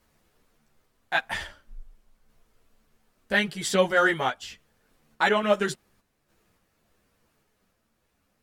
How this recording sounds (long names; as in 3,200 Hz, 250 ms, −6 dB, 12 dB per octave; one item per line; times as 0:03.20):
sample-and-hold tremolo
a shimmering, thickened sound